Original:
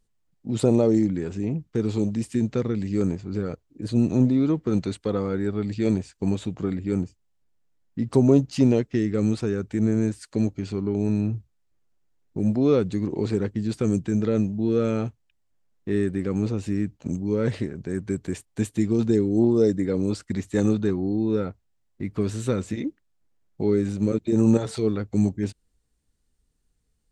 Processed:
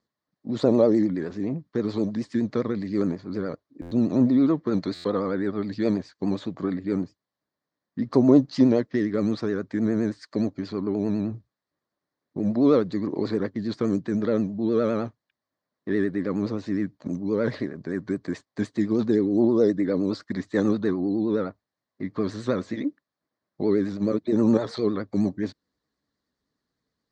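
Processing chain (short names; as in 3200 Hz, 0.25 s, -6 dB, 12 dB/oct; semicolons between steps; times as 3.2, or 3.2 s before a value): speaker cabinet 150–5600 Hz, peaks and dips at 280 Hz +5 dB, 600 Hz +7 dB, 1100 Hz +9 dB, 1800 Hz +7 dB, 2700 Hz -9 dB, 4300 Hz +6 dB; vibrato 9.6 Hz 90 cents; stuck buffer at 3.81/4.94, samples 512, times 8; gain -2 dB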